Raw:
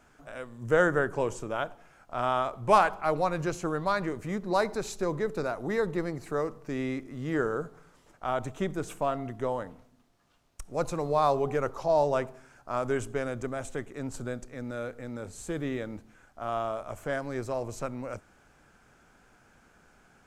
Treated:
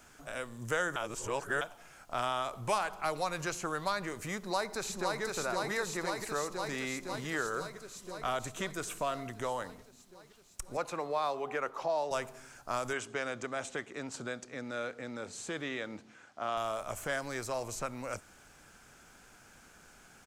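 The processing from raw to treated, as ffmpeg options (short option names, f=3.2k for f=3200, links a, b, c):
-filter_complex "[0:a]asplit=2[a][b];[b]afade=t=in:st=4.38:d=0.01,afade=t=out:st=5.22:d=0.01,aecho=0:1:510|1020|1530|2040|2550|3060|3570|4080|4590|5100|5610|6120:0.749894|0.524926|0.367448|0.257214|0.18005|0.126035|0.0882243|0.061757|0.0432299|0.0302609|0.0211827|0.0148279[c];[a][c]amix=inputs=2:normalize=0,asettb=1/sr,asplit=3[d][e][f];[d]atrim=end=7.494[g];[e]atrim=start=7.49:end=9.3,asetpts=PTS-STARTPTS,afade=t=in:d=0.004:c=qsin,afade=t=out:st=1.806:d=0.004:c=qsin,asuperstop=centerf=840:order=4:qfactor=7[h];[f]atrim=start=9.296[i];[g][h]acrossfade=d=0.004:c1=hsin:c2=qsin[j];[j][i]acrossfade=d=0.004:c1=qsin:c2=hsin,asettb=1/sr,asplit=3[k][l][m];[k]atrim=end=10.774[n];[l]atrim=start=10.77:end=12.11,asetpts=PTS-STARTPTS,afade=t=in:d=0.004:c=qsin,afade=t=out:st=1.336:d=0.004:c=qsin,acrossover=split=170 3100:gain=0.0708 1 0.158[o][p][q];[o][p][q]amix=inputs=3:normalize=0[r];[m]atrim=start=12.106[s];[n][r]acrossfade=d=0.004:c1=hsin:c2=qsin[t];[t][s]acrossfade=d=0.004:c1=qsin:c2=hsin,asettb=1/sr,asplit=3[u][v][w];[u]atrim=end=12.934[x];[v]atrim=start=12.93:end=16.57,asetpts=PTS-STARTPTS,afade=t=in:d=0.004:c=qsin,afade=t=out:st=3.636:d=0.004:c=qsin,highpass=160,lowpass=5.1k[y];[w]atrim=start=16.566[z];[x][y]acrossfade=d=0.004:c1=hsin:c2=qsin[aa];[aa][z]acrossfade=d=0.004:c1=qsin:c2=hsin,asplit=3[ab][ac][ad];[ab]atrim=end=0.962[ae];[ac]atrim=start=0.958:end=1.612,asetpts=PTS-STARTPTS,areverse[af];[ad]atrim=start=1.608[ag];[ae][af]acrossfade=d=0.004:c1=hsin:c2=hsin[ah];[ah][ag]acrossfade=d=0.004:c1=hsin:c2=hsin,highshelf=f=2.8k:g=11.5,acrossover=split=680|2500[ai][aj][ak];[ai]acompressor=threshold=-40dB:ratio=4[al];[aj]acompressor=threshold=-33dB:ratio=4[am];[ak]acompressor=threshold=-41dB:ratio=4[an];[al][am][an]amix=inputs=3:normalize=0"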